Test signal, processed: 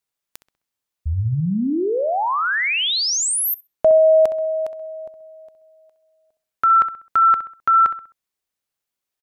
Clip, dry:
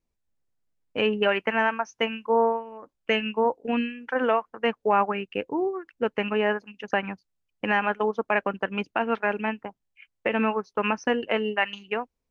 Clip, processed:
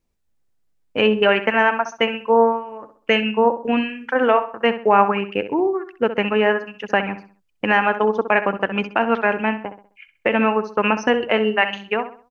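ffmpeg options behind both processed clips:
ffmpeg -i in.wav -filter_complex "[0:a]asplit=2[link_01][link_02];[link_02]adelay=65,lowpass=frequency=3300:poles=1,volume=-11dB,asplit=2[link_03][link_04];[link_04]adelay=65,lowpass=frequency=3300:poles=1,volume=0.38,asplit=2[link_05][link_06];[link_06]adelay=65,lowpass=frequency=3300:poles=1,volume=0.38,asplit=2[link_07][link_08];[link_08]adelay=65,lowpass=frequency=3300:poles=1,volume=0.38[link_09];[link_01][link_03][link_05][link_07][link_09]amix=inputs=5:normalize=0,volume=6.5dB" out.wav

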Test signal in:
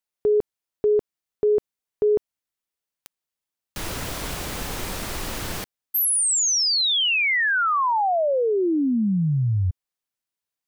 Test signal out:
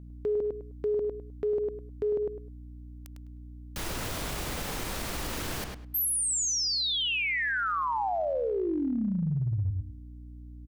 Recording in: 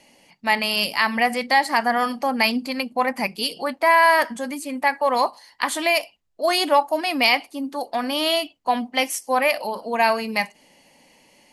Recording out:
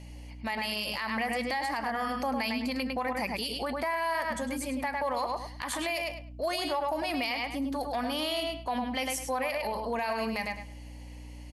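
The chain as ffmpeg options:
ffmpeg -i in.wav -filter_complex "[0:a]aeval=exprs='val(0)+0.00794*(sin(2*PI*60*n/s)+sin(2*PI*2*60*n/s)/2+sin(2*PI*3*60*n/s)/3+sin(2*PI*4*60*n/s)/4+sin(2*PI*5*60*n/s)/5)':channel_layout=same,asplit=2[link_01][link_02];[link_02]adelay=103,lowpass=frequency=4000:poles=1,volume=-6dB,asplit=2[link_03][link_04];[link_04]adelay=103,lowpass=frequency=4000:poles=1,volume=0.2,asplit=2[link_05][link_06];[link_06]adelay=103,lowpass=frequency=4000:poles=1,volume=0.2[link_07];[link_01][link_03][link_05][link_07]amix=inputs=4:normalize=0,acompressor=threshold=-23dB:ratio=6:attack=0.14:release=141:knee=6:detection=peak,volume=-2dB" out.wav

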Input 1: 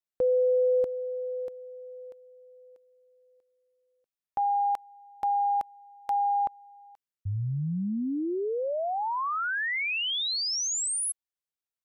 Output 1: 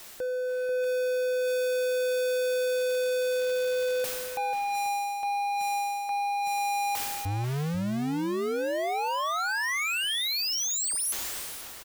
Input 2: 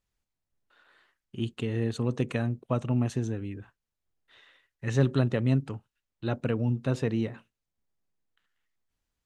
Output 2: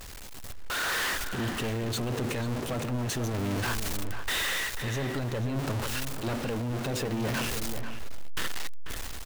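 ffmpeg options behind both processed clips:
ffmpeg -i in.wav -filter_complex "[0:a]aeval=exprs='val(0)+0.5*0.0237*sgn(val(0))':channel_layout=same,equalizer=frequency=150:width=1.6:gain=-6,dynaudnorm=framelen=140:gausssize=9:maxgain=13.5dB,alimiter=limit=-10dB:level=0:latency=1:release=37,areverse,acompressor=threshold=-22dB:ratio=16:attack=100:release=513:knee=1:detection=rms,areverse,asoftclip=type=hard:threshold=-25dB,asplit=2[link_01][link_02];[link_02]adelay=489.8,volume=-8dB,highshelf=frequency=4000:gain=-11[link_03];[link_01][link_03]amix=inputs=2:normalize=0,volume=-3.5dB" out.wav

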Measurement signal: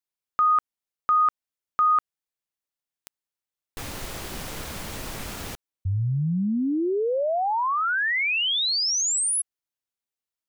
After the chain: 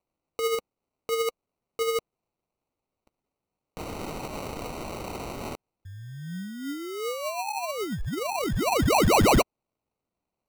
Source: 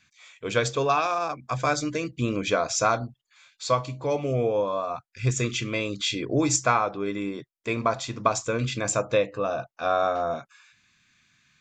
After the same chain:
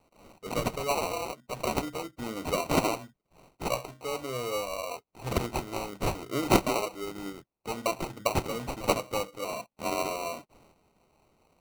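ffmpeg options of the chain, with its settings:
ffmpeg -i in.wav -af "aphaser=in_gain=1:out_gain=1:delay=4.9:decay=0.32:speed=1.1:type=triangular,bass=frequency=250:gain=-7,treble=frequency=4000:gain=13,acrusher=samples=26:mix=1:aa=0.000001,volume=-7.5dB" out.wav

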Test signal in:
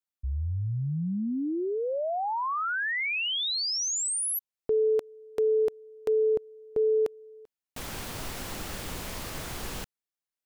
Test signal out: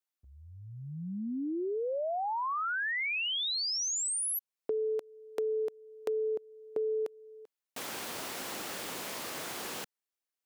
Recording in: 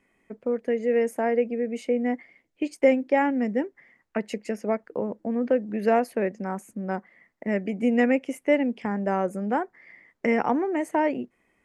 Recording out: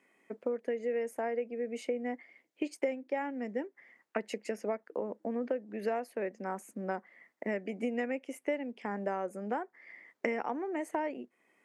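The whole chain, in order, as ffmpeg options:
ffmpeg -i in.wav -af "highpass=280,acompressor=threshold=-30dB:ratio=6:attack=17:release=940:knee=6:detection=peak" out.wav

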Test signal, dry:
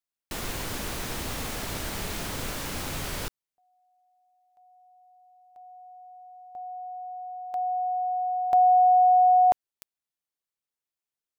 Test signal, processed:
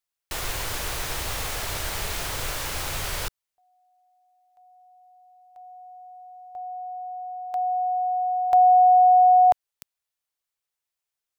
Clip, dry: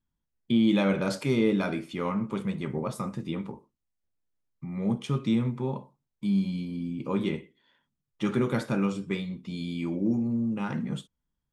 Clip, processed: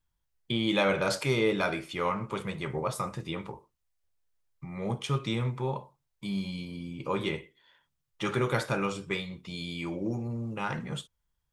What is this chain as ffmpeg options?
ffmpeg -i in.wav -af "equalizer=frequency=230:width=1.3:gain=-15,volume=4.5dB" out.wav

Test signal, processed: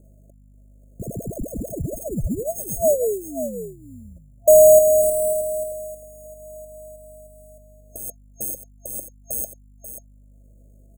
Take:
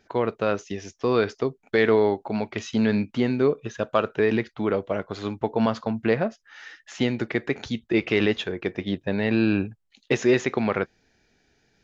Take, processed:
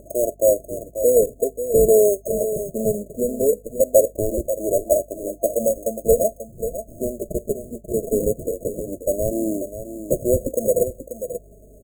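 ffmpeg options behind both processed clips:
ffmpeg -i in.wav -filter_complex "[0:a]highpass=frequency=530:width_type=q:width=3.9,highshelf=frequency=2200:gain=-4.5,aecho=1:1:1.1:0.37,acompressor=mode=upward:threshold=-36dB:ratio=2.5,flanger=delay=3.1:depth=1.9:regen=6:speed=0.21:shape=sinusoidal,acrusher=bits=6:mode=log:mix=0:aa=0.000001,aeval=exprs='val(0)+0.00158*(sin(2*PI*50*n/s)+sin(2*PI*2*50*n/s)/2+sin(2*PI*3*50*n/s)/3+sin(2*PI*4*50*n/s)/4+sin(2*PI*5*50*n/s)/5)':channel_layout=same,acrusher=samples=24:mix=1:aa=0.000001,afftfilt=real='re*(1-between(b*sr/4096,680,6500))':imag='im*(1-between(b*sr/4096,680,6500))':win_size=4096:overlap=0.75,asplit=2[link_01][link_02];[link_02]aecho=0:1:537:0.299[link_03];[link_01][link_03]amix=inputs=2:normalize=0,volume=6.5dB" out.wav

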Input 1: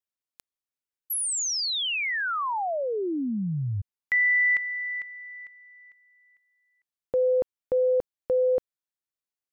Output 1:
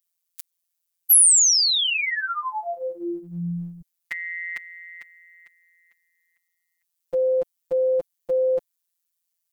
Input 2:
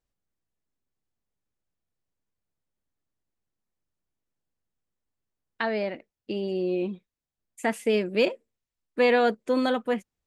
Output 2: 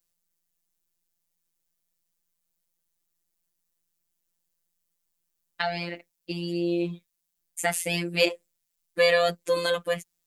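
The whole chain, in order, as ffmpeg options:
ffmpeg -i in.wav -af "afftfilt=real='hypot(re,im)*cos(PI*b)':imag='0':win_size=1024:overlap=0.75,crystalizer=i=4.5:c=0,volume=1.5dB" out.wav

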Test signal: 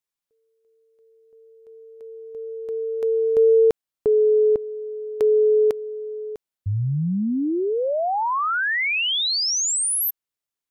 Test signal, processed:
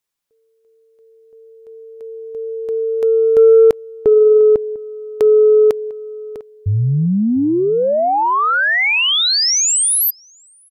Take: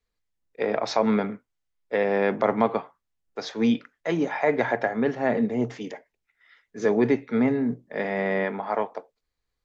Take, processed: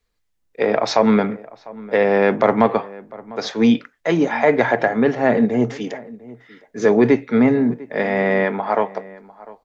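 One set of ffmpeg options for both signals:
ffmpeg -i in.wav -filter_complex "[0:a]acontrast=42,asplit=2[link_01][link_02];[link_02]adelay=699.7,volume=-20dB,highshelf=frequency=4000:gain=-15.7[link_03];[link_01][link_03]amix=inputs=2:normalize=0,volume=2dB" out.wav

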